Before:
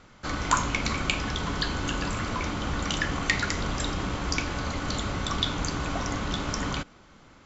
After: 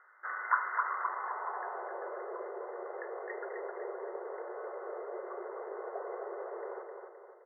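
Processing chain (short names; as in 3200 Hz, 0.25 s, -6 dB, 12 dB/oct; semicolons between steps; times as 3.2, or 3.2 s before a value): feedback echo 0.26 s, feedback 47%, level -5 dB; band-pass sweep 1500 Hz -> 470 Hz, 0.68–2.33; FFT band-pass 350–2100 Hz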